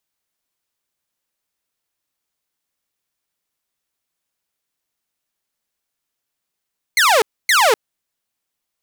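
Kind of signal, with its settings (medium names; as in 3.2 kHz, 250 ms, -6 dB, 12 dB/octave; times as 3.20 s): burst of laser zaps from 2.2 kHz, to 400 Hz, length 0.25 s saw, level -8 dB, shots 2, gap 0.27 s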